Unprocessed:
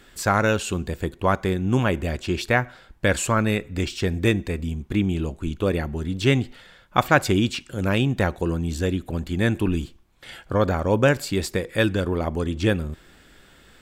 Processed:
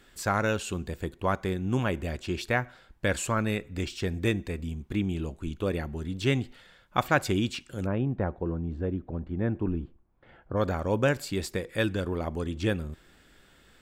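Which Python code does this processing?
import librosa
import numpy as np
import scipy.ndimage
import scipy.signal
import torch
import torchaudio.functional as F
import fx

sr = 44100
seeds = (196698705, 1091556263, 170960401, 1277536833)

y = fx.lowpass(x, sr, hz=1100.0, slope=12, at=(7.85, 10.56), fade=0.02)
y = F.gain(torch.from_numpy(y), -6.5).numpy()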